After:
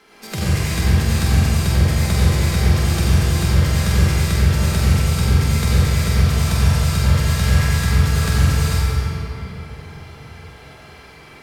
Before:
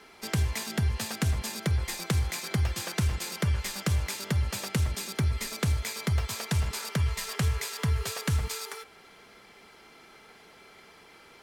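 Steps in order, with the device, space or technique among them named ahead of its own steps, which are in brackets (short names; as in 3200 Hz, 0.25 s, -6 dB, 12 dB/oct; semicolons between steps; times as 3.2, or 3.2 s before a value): tunnel (flutter echo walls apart 7.9 m, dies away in 0.58 s; reverb RT60 3.4 s, pre-delay 73 ms, DRR -8.5 dB)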